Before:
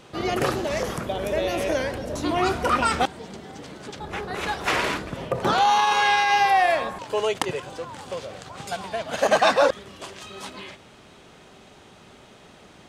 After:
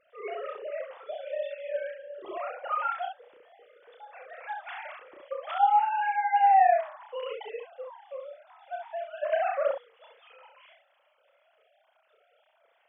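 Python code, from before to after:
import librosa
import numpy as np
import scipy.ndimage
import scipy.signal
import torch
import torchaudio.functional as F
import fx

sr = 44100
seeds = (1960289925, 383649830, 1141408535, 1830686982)

y = fx.sine_speech(x, sr)
y = fx.spec_erase(y, sr, start_s=1.35, length_s=0.85, low_hz=610.0, high_hz=1300.0)
y = fx.room_early_taps(y, sr, ms=(31, 66), db=(-4.0, -4.5))
y = F.gain(torch.from_numpy(y), -8.5).numpy()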